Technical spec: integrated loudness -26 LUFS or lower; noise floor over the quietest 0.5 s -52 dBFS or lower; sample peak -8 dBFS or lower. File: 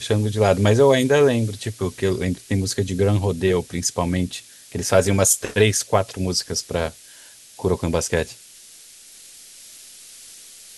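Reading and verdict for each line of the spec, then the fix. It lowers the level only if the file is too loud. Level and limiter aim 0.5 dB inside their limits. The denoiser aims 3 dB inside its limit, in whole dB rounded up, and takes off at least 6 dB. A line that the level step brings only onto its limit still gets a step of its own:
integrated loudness -20.5 LUFS: fail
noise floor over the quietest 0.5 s -46 dBFS: fail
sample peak -2.0 dBFS: fail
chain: denoiser 6 dB, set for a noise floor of -46 dBFS; gain -6 dB; limiter -8.5 dBFS

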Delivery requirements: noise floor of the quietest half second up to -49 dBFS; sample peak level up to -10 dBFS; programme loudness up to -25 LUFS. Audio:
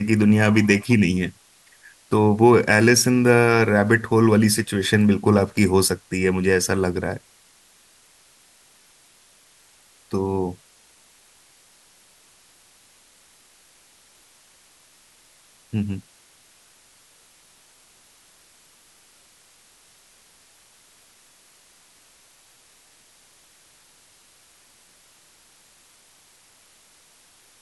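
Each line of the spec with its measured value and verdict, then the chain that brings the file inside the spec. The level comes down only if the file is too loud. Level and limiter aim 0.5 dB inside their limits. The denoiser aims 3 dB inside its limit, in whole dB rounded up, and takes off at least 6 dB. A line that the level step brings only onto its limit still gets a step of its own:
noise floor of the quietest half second -55 dBFS: OK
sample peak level -3.0 dBFS: fail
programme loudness -19.0 LUFS: fail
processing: gain -6.5 dB; limiter -10.5 dBFS

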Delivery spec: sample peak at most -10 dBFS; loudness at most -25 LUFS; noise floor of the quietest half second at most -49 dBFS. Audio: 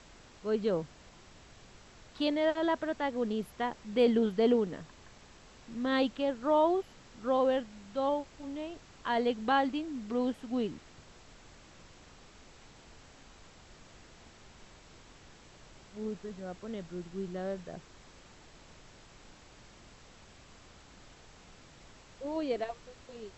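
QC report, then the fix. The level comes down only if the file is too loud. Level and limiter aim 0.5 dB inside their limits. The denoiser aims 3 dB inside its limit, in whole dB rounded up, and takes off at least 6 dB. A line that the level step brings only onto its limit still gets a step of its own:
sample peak -16.0 dBFS: OK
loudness -32.5 LUFS: OK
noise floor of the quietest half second -56 dBFS: OK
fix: none

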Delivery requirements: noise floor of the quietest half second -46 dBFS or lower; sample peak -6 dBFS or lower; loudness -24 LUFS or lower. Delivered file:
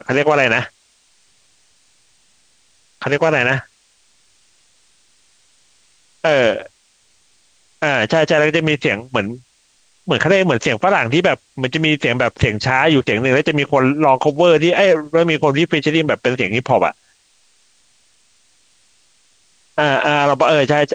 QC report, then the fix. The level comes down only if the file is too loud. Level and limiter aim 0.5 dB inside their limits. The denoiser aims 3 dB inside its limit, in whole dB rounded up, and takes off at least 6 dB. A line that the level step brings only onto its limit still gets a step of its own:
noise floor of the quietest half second -57 dBFS: OK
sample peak -2.5 dBFS: fail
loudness -15.5 LUFS: fail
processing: gain -9 dB

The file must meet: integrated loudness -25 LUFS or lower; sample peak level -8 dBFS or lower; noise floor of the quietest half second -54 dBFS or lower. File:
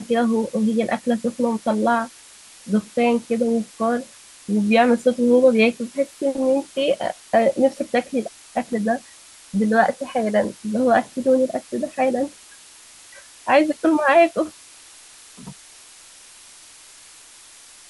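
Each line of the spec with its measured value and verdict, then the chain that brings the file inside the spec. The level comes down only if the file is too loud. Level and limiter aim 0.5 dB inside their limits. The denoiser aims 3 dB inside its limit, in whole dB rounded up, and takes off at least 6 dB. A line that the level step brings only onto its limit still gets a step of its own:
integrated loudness -20.5 LUFS: fail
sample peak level -4.5 dBFS: fail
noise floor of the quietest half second -46 dBFS: fail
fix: denoiser 6 dB, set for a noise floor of -46 dBFS; gain -5 dB

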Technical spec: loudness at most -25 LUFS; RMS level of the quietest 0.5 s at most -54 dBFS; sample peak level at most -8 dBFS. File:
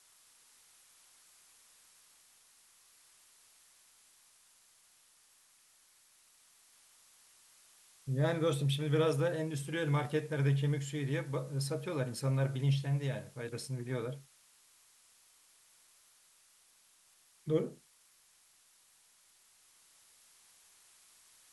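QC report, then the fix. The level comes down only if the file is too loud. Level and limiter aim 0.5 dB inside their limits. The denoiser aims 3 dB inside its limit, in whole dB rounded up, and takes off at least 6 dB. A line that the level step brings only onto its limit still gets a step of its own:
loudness -34.5 LUFS: OK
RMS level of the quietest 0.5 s -67 dBFS: OK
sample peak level -18.5 dBFS: OK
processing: none

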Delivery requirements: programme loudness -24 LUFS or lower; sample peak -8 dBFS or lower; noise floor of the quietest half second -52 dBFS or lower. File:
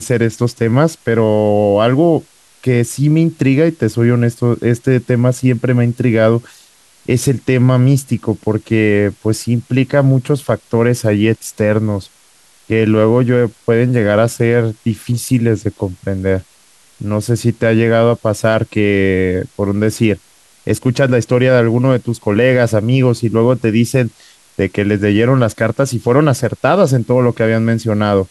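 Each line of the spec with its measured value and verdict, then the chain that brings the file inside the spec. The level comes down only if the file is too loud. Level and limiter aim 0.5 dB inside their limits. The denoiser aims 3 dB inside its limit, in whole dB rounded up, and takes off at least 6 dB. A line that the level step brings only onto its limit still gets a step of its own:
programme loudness -14.0 LUFS: fail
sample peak -1.5 dBFS: fail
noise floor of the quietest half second -49 dBFS: fail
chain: gain -10.5 dB

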